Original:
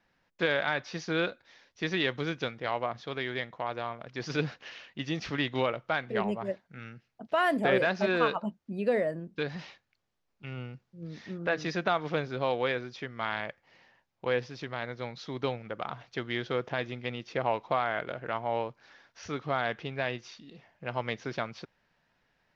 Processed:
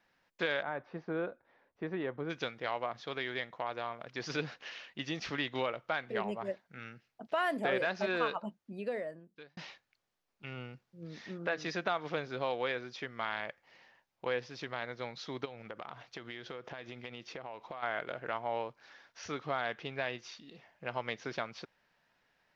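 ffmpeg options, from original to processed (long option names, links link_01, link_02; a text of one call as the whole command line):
ffmpeg -i in.wav -filter_complex "[0:a]asplit=3[link_01][link_02][link_03];[link_01]afade=type=out:start_time=0.61:duration=0.02[link_04];[link_02]lowpass=1000,afade=type=in:start_time=0.61:duration=0.02,afade=type=out:start_time=2.29:duration=0.02[link_05];[link_03]afade=type=in:start_time=2.29:duration=0.02[link_06];[link_04][link_05][link_06]amix=inputs=3:normalize=0,asplit=3[link_07][link_08][link_09];[link_07]afade=type=out:start_time=15.44:duration=0.02[link_10];[link_08]acompressor=threshold=-37dB:ratio=16:attack=3.2:release=140:knee=1:detection=peak,afade=type=in:start_time=15.44:duration=0.02,afade=type=out:start_time=17.82:duration=0.02[link_11];[link_09]afade=type=in:start_time=17.82:duration=0.02[link_12];[link_10][link_11][link_12]amix=inputs=3:normalize=0,asplit=2[link_13][link_14];[link_13]atrim=end=9.57,asetpts=PTS-STARTPTS,afade=type=out:start_time=8.32:duration=1.25[link_15];[link_14]atrim=start=9.57,asetpts=PTS-STARTPTS,afade=type=in:duration=0.004:curve=hsin[link_16];[link_15][link_16]concat=n=2:v=0:a=1,lowshelf=frequency=240:gain=-8.5,acompressor=threshold=-36dB:ratio=1.5" out.wav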